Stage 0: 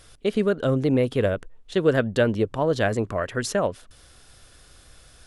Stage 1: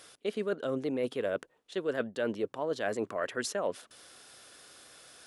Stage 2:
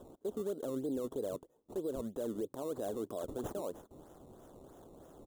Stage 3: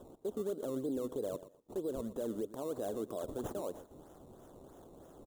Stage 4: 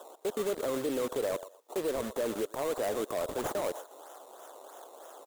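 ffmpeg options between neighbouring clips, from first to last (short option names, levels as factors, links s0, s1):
-af "highpass=280,areverse,acompressor=threshold=0.0355:ratio=6,areverse"
-af "acrusher=samples=19:mix=1:aa=0.000001:lfo=1:lforange=19:lforate=3.1,firequalizer=gain_entry='entry(190,0);entry(310,4);entry(2300,-27);entry(3400,-9);entry(4900,-18);entry(6900,-5)':delay=0.05:min_phase=1,alimiter=level_in=1.88:limit=0.0631:level=0:latency=1:release=63,volume=0.531"
-af "aecho=1:1:119|238:0.168|0.0319"
-filter_complex "[0:a]acrossover=split=550[s0][s1];[s0]acrusher=bits=6:mix=0:aa=0.000001[s2];[s1]aeval=exprs='0.0376*sin(PI/2*3.16*val(0)/0.0376)':c=same[s3];[s2][s3]amix=inputs=2:normalize=0"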